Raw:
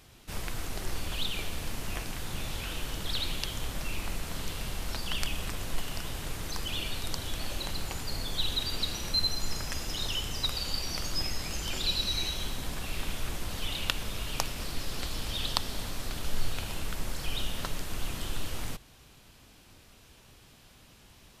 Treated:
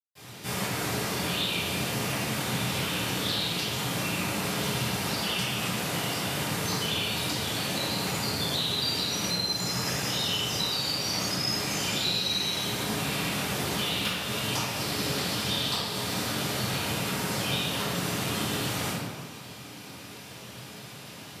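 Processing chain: high-pass 120 Hz 24 dB/octave; compression 3:1, threshold -42 dBFS, peak gain reduction 15 dB; reverberation RT60 1.4 s, pre-delay 153 ms, DRR -60 dB; trim +4.5 dB

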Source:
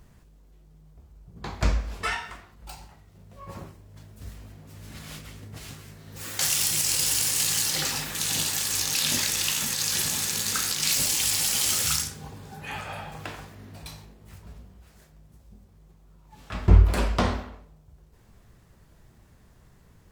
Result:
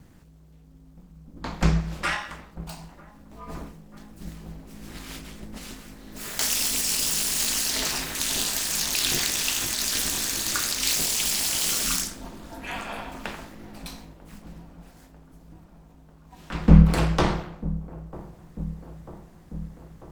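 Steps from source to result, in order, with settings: self-modulated delay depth 0.071 ms; ring modulator 110 Hz; feedback echo behind a low-pass 944 ms, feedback 69%, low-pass 840 Hz, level -16.5 dB; trim +5 dB

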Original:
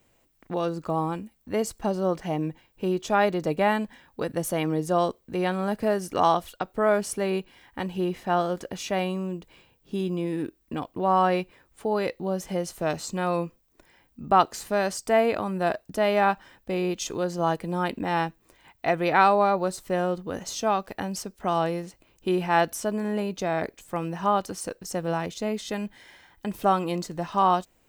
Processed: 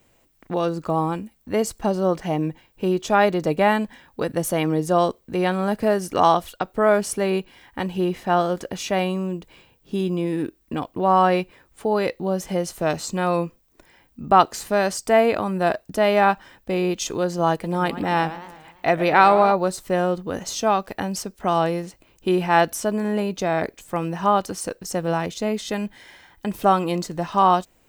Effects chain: 17.52–19.52 s: modulated delay 111 ms, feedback 54%, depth 182 cents, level -14 dB; trim +4.5 dB

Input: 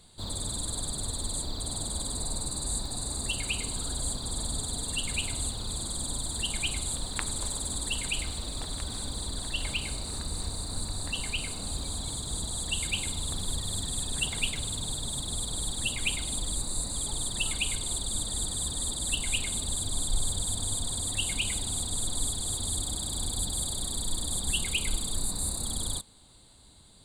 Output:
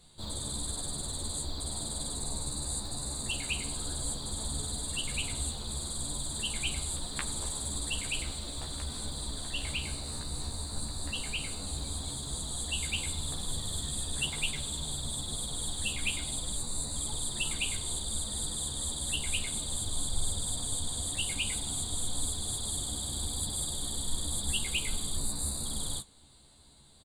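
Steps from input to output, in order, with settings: flange 0.97 Hz, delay 5.3 ms, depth 9.5 ms, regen -59%; doubling 14 ms -3 dB

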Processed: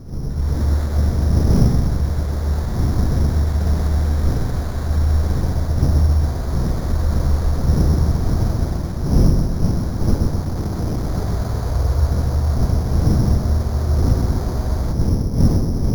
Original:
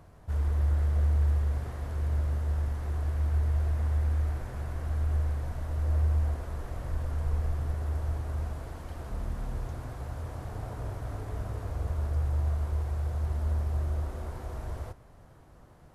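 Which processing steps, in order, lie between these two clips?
wind noise 140 Hz -30 dBFS; 10.41–11.15 s: overload inside the chain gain 32 dB; level rider gain up to 13 dB; filtered feedback delay 128 ms, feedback 60%, low-pass 1.3 kHz, level -4.5 dB; careless resampling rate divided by 8×, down filtered, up hold; trim -1 dB

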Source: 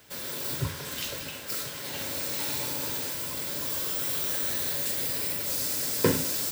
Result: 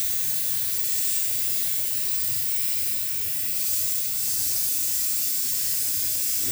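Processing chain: time reversed locally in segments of 118 ms; FFT filter 140 Hz 0 dB, 790 Hz -15 dB, 2.6 kHz +1 dB, 4.1 kHz 0 dB, 7 kHz +6 dB; Paulstretch 4.9×, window 0.10 s, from 4.69 s; peaking EQ 180 Hz -12.5 dB 0.41 oct

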